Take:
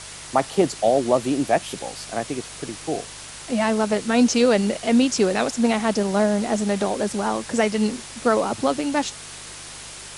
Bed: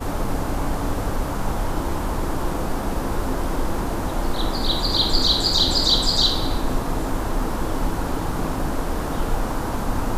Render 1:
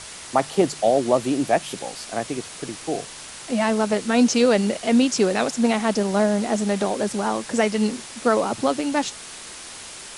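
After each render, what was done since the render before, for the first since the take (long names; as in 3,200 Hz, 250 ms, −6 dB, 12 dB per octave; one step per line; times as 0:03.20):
hum removal 50 Hz, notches 3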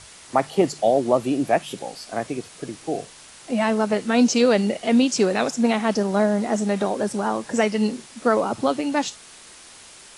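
noise reduction from a noise print 7 dB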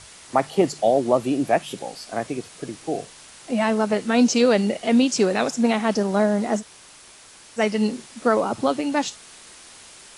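0:06.60–0:07.59: fill with room tone, crossfade 0.06 s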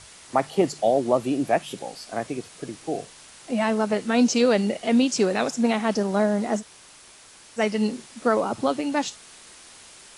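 level −2 dB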